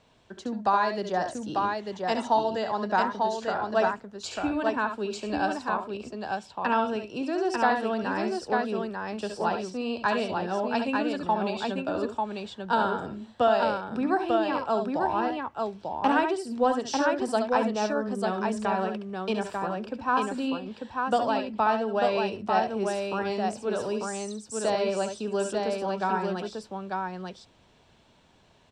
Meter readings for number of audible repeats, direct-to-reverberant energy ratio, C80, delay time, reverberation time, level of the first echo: 2, no reverb, no reverb, 68 ms, no reverb, -7.0 dB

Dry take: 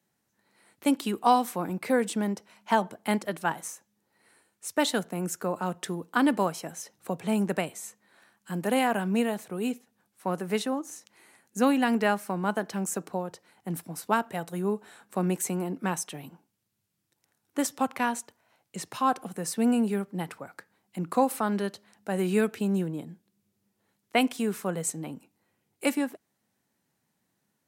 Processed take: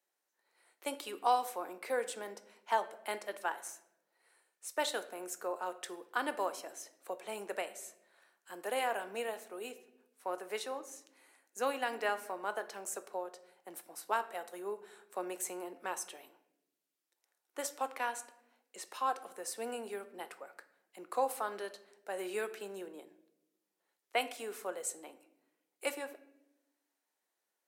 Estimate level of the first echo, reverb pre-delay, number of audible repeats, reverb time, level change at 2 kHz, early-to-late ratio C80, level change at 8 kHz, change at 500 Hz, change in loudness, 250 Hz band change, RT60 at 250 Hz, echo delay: no echo, 5 ms, no echo, 0.85 s, -7.0 dB, 17.0 dB, -7.5 dB, -8.0 dB, -10.0 dB, -22.0 dB, 1.2 s, no echo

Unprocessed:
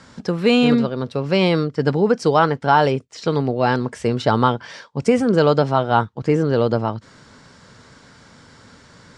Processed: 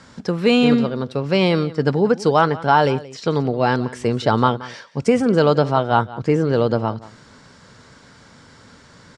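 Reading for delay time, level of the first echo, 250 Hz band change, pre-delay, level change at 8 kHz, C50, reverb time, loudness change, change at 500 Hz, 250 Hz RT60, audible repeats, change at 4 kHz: 177 ms, -18.5 dB, 0.0 dB, no reverb, 0.0 dB, no reverb, no reverb, 0.0 dB, 0.0 dB, no reverb, 1, 0.0 dB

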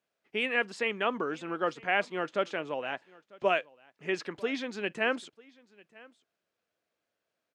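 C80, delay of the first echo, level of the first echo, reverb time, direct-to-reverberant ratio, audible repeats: no reverb, 946 ms, -24.0 dB, no reverb, no reverb, 1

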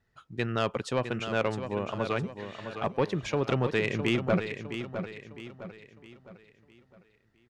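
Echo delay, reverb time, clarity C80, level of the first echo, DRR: 659 ms, no reverb, no reverb, -9.0 dB, no reverb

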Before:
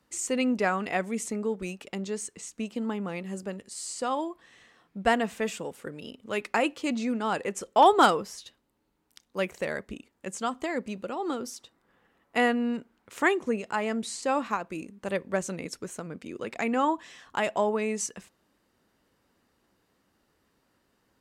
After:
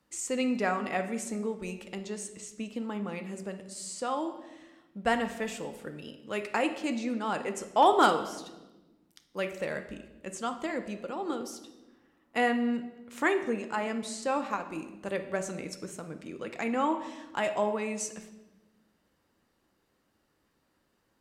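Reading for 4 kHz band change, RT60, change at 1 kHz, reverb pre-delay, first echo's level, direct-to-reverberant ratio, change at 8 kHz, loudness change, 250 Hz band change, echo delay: -3.0 dB, 1.1 s, -2.5 dB, 3 ms, no echo, 7.0 dB, -3.0 dB, -2.5 dB, -2.0 dB, no echo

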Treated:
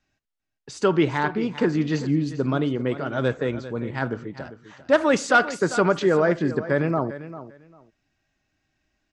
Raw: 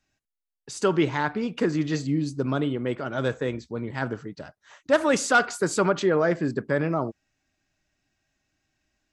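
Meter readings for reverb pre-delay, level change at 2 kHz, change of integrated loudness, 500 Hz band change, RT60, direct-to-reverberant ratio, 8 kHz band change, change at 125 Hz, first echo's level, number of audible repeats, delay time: no reverb, +2.0 dB, +2.5 dB, +2.5 dB, no reverb, no reverb, -3.5 dB, +2.5 dB, -14.0 dB, 2, 397 ms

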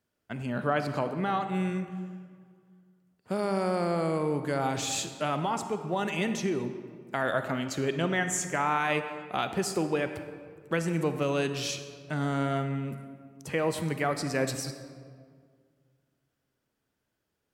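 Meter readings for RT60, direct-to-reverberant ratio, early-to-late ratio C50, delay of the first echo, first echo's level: 1.9 s, 8.5 dB, 9.0 dB, no echo, no echo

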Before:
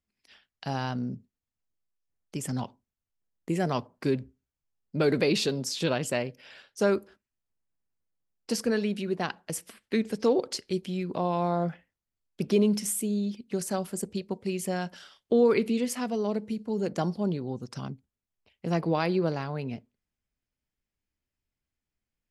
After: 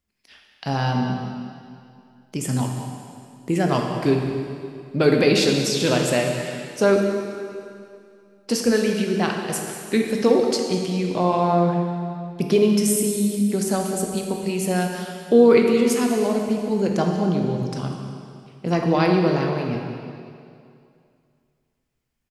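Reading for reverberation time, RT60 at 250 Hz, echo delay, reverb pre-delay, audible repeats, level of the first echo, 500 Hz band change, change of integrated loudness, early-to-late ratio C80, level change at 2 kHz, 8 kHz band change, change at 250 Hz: 2.4 s, 2.3 s, 196 ms, 7 ms, 1, -14.5 dB, +8.5 dB, +8.0 dB, 4.0 dB, +8.5 dB, +8.0 dB, +8.5 dB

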